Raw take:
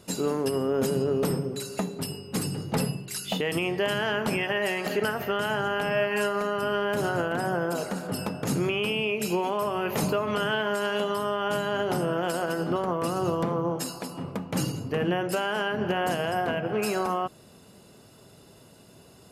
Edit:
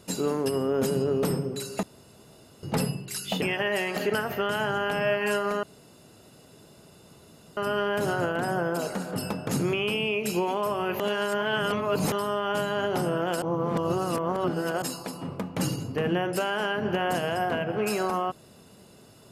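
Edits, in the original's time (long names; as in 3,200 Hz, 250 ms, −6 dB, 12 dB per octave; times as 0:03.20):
0:01.83–0:02.63: fill with room tone
0:03.42–0:04.32: remove
0:06.53: splice in room tone 1.94 s
0:09.96–0:11.08: reverse
0:12.38–0:13.78: reverse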